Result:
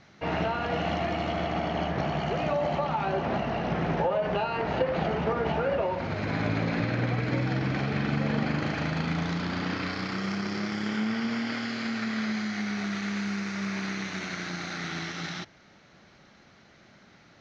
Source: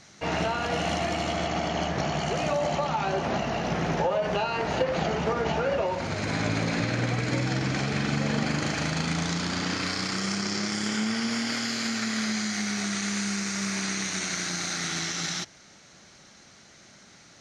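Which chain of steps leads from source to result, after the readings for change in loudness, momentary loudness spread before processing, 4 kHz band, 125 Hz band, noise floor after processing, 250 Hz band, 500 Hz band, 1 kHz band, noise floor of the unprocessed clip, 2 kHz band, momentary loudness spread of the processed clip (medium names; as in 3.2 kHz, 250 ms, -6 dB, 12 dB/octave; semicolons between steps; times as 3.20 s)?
-2.0 dB, 2 LU, -7.0 dB, 0.0 dB, -57 dBFS, -0.5 dB, -0.5 dB, -1.0 dB, -53 dBFS, -2.5 dB, 5 LU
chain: distance through air 240 m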